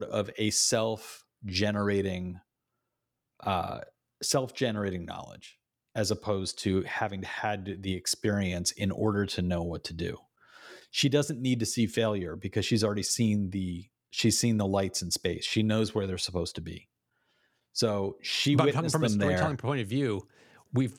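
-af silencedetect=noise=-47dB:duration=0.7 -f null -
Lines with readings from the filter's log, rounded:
silence_start: 2.39
silence_end: 3.40 | silence_duration: 1.01
silence_start: 16.82
silence_end: 17.75 | silence_duration: 0.93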